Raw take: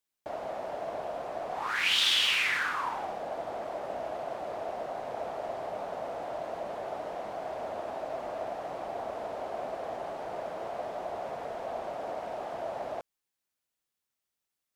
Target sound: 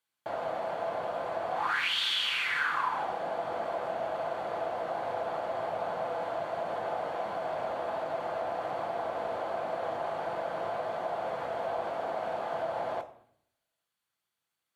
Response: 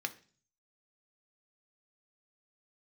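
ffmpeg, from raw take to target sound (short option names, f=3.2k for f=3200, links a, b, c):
-filter_complex "[0:a]acompressor=threshold=-33dB:ratio=4[a];[1:a]atrim=start_sample=2205,asetrate=26901,aresample=44100[b];[a][b]afir=irnorm=-1:irlink=0"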